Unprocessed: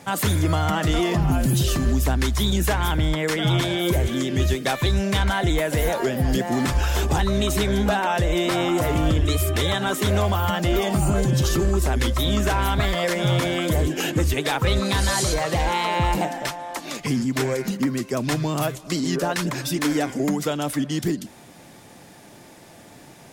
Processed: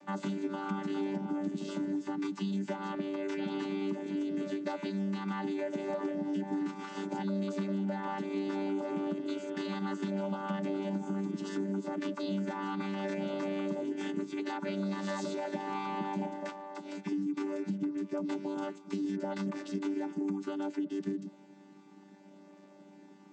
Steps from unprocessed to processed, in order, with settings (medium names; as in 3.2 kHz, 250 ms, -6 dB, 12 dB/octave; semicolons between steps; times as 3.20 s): vocoder on a held chord bare fifth, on G3; compression, threshold -23 dBFS, peak gain reduction 8 dB; trim -7.5 dB